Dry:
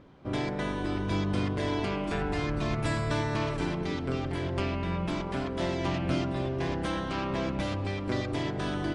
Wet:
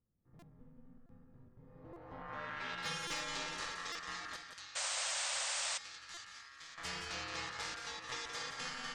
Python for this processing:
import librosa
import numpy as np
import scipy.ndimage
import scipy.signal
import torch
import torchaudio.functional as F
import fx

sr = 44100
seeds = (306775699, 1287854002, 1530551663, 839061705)

y = scipy.signal.sosfilt(scipy.signal.butter(2, 52.0, 'highpass', fs=sr, output='sos'), x)
y = F.preemphasis(torch.from_numpy(y), 0.9).numpy()
y = y * np.sin(2.0 * np.pi * 1500.0 * np.arange(len(y)) / sr)
y = fx.tone_stack(y, sr, knobs='5-5-5', at=(4.36, 6.78))
y = y + 10.0 ** (-6.5 / 20.0) * np.pad(y, (int(173 * sr / 1000.0), 0))[:len(y)]
y = fx.filter_sweep_lowpass(y, sr, from_hz=180.0, to_hz=6700.0, start_s=1.6, end_s=2.99, q=1.1)
y = np.clip(y, -10.0 ** (-34.5 / 20.0), 10.0 ** (-34.5 / 20.0))
y = fx.spec_paint(y, sr, seeds[0], shape='noise', start_s=4.75, length_s=1.03, low_hz=510.0, high_hz=9000.0, level_db=-44.0)
y = fx.buffer_glitch(y, sr, at_s=(0.39, 1.06, 1.93, 3.07, 3.92, 6.14), block=128, repeats=10)
y = y * librosa.db_to_amplitude(6.0)